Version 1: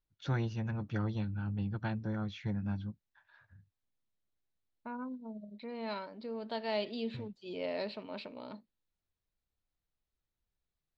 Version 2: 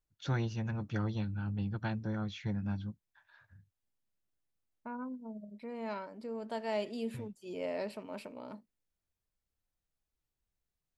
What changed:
second voice: remove low-pass with resonance 4,000 Hz, resonance Q 4.9
master: remove high-frequency loss of the air 85 metres

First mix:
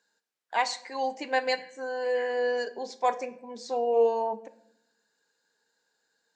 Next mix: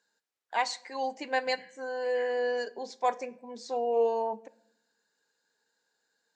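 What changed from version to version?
first voice: send −7.0 dB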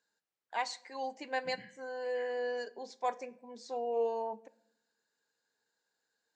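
first voice −6.0 dB
second voice: remove high-pass filter 300 Hz 12 dB per octave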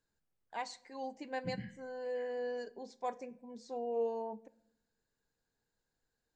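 first voice −6.0 dB
master: remove meter weighting curve A

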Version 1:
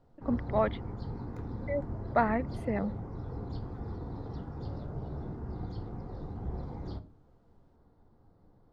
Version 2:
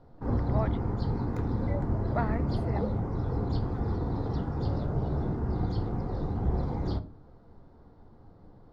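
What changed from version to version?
speech −6.0 dB
background +9.0 dB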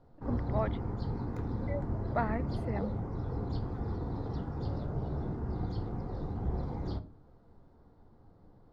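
background −5.5 dB

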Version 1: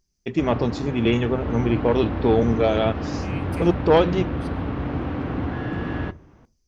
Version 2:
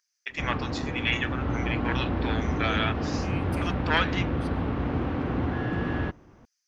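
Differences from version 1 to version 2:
first voice: add high-pass with resonance 1,600 Hz, resonance Q 2.2
reverb: off

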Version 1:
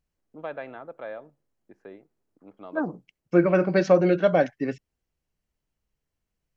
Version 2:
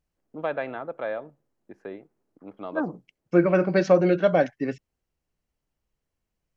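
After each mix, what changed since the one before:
first voice +6.5 dB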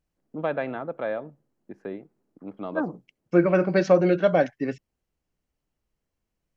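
first voice: add parametric band 180 Hz +7 dB 1.8 octaves

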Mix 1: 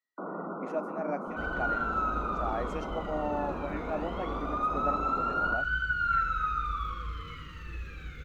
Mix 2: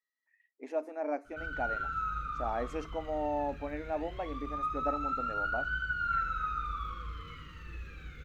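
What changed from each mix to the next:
first sound: muted
second sound −4.0 dB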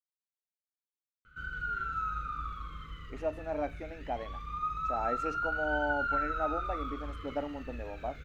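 speech: entry +2.50 s

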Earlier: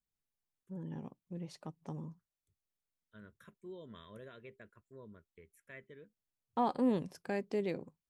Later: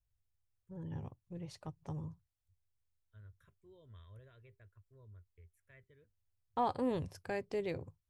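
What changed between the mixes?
second voice −11.0 dB
master: add low shelf with overshoot 140 Hz +12.5 dB, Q 3

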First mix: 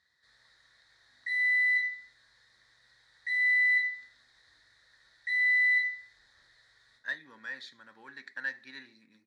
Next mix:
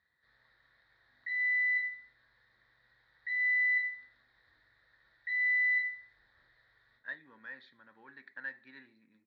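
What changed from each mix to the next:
speech −3.0 dB
master: add high-frequency loss of the air 380 metres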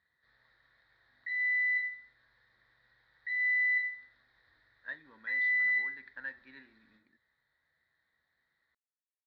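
speech: entry −2.20 s

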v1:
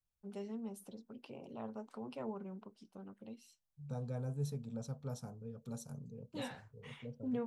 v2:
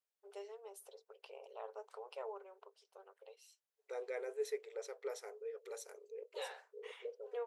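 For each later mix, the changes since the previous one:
second voice: remove phaser with its sweep stopped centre 840 Hz, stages 4
master: add linear-phase brick-wall high-pass 390 Hz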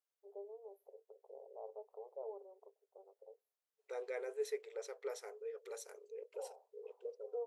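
first voice: add inverse Chebyshev band-stop filter 1,700–8,900 Hz, stop band 50 dB

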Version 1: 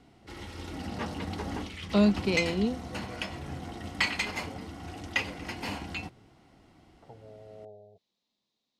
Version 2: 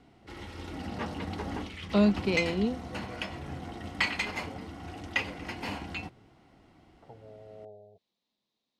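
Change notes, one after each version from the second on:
master: add bass and treble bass −1 dB, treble −5 dB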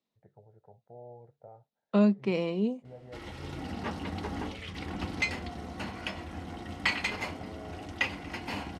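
second voice: add parametric band 4,100 Hz −8.5 dB 1.1 octaves
background: entry +2.85 s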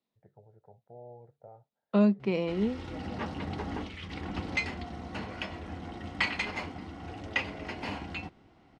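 background: entry −0.65 s
master: add high-frequency loss of the air 65 metres

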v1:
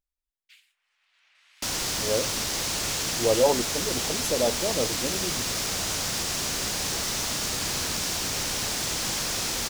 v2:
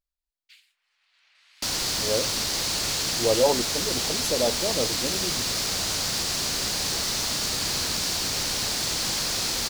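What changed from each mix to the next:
master: add parametric band 4,400 Hz +6 dB 0.44 octaves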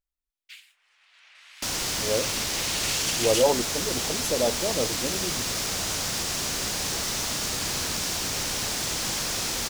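first sound +9.5 dB
master: add parametric band 4,400 Hz −6 dB 0.44 octaves

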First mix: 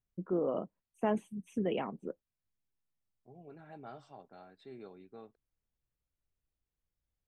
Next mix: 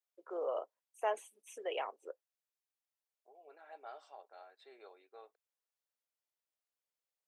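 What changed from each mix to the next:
first voice: add bass and treble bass −7 dB, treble +8 dB
master: add inverse Chebyshev high-pass filter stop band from 190 Hz, stop band 50 dB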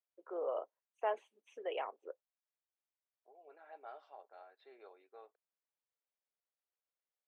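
master: add high-frequency loss of the air 250 metres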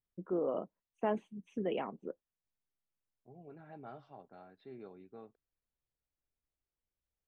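master: remove inverse Chebyshev high-pass filter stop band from 190 Hz, stop band 50 dB

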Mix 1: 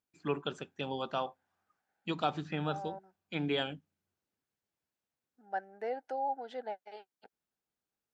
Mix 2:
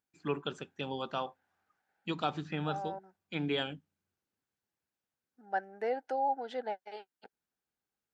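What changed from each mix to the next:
second voice +4.5 dB
master: add parametric band 660 Hz −3 dB 0.53 octaves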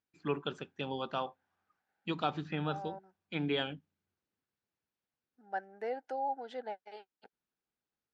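first voice: add low-pass filter 5,100 Hz 12 dB per octave
second voice −4.0 dB

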